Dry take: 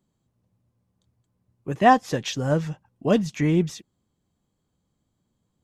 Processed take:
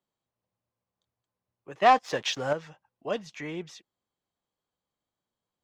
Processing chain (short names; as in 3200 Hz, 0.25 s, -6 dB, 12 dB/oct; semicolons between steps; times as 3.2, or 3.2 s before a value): 1.82–2.53 sample leveller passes 2; three-band isolator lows -16 dB, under 450 Hz, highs -13 dB, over 6000 Hz; gain -5.5 dB